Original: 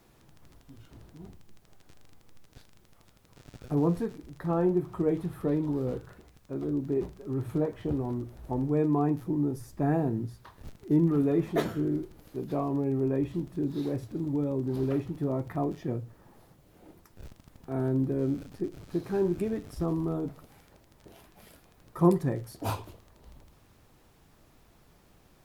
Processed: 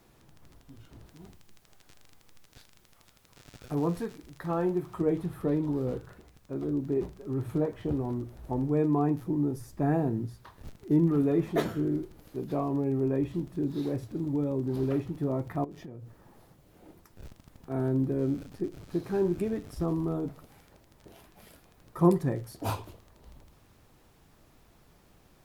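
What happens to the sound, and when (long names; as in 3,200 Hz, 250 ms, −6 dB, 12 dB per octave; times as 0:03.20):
0:01.06–0:05.01: tilt shelving filter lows −4 dB, about 880 Hz
0:15.64–0:17.70: downward compressor 12 to 1, threshold −39 dBFS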